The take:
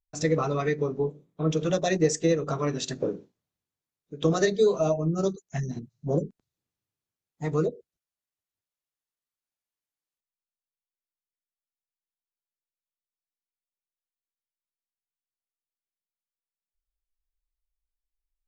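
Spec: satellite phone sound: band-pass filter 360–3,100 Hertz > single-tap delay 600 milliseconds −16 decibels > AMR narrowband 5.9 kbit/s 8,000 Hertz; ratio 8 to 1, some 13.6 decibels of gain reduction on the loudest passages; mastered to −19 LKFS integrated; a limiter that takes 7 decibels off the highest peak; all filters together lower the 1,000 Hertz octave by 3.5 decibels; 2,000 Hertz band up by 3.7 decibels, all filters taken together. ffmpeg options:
ffmpeg -i in.wav -af "equalizer=frequency=1000:width_type=o:gain=-7,equalizer=frequency=2000:width_type=o:gain=6.5,acompressor=threshold=-32dB:ratio=8,alimiter=level_in=4dB:limit=-24dB:level=0:latency=1,volume=-4dB,highpass=360,lowpass=3100,aecho=1:1:600:0.158,volume=24.5dB" -ar 8000 -c:a libopencore_amrnb -b:a 5900 out.amr

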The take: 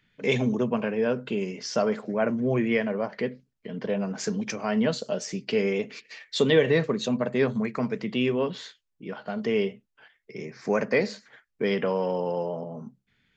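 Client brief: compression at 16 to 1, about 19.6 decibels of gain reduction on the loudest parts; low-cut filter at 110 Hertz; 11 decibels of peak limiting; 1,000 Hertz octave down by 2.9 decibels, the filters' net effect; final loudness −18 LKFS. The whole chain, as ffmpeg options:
ffmpeg -i in.wav -af "highpass=110,equalizer=frequency=1000:width_type=o:gain=-4,acompressor=threshold=-36dB:ratio=16,volume=24.5dB,alimiter=limit=-7.5dB:level=0:latency=1" out.wav

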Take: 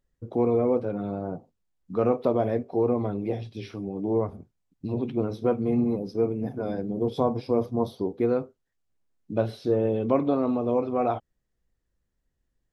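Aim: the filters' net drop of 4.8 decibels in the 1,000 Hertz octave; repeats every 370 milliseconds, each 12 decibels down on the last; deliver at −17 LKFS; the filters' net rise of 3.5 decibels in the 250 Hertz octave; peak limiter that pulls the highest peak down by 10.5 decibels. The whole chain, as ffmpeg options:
ffmpeg -i in.wav -af "equalizer=frequency=250:width_type=o:gain=4.5,equalizer=frequency=1000:width_type=o:gain=-8,alimiter=limit=-20dB:level=0:latency=1,aecho=1:1:370|740|1110:0.251|0.0628|0.0157,volume=13dB" out.wav

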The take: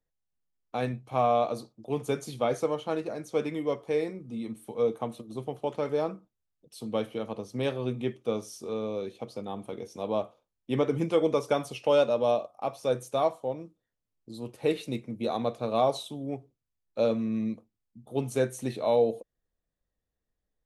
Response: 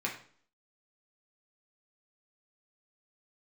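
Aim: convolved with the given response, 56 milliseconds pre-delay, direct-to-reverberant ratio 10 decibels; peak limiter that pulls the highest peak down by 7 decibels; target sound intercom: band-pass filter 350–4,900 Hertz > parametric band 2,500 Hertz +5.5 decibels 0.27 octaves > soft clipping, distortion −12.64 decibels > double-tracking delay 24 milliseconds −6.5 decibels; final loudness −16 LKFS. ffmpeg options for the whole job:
-filter_complex "[0:a]alimiter=limit=-20dB:level=0:latency=1,asplit=2[link_01][link_02];[1:a]atrim=start_sample=2205,adelay=56[link_03];[link_02][link_03]afir=irnorm=-1:irlink=0,volume=-15dB[link_04];[link_01][link_04]amix=inputs=2:normalize=0,highpass=350,lowpass=4900,equalizer=frequency=2500:width_type=o:width=0.27:gain=5.5,asoftclip=threshold=-28dB,asplit=2[link_05][link_06];[link_06]adelay=24,volume=-6.5dB[link_07];[link_05][link_07]amix=inputs=2:normalize=0,volume=20.5dB"

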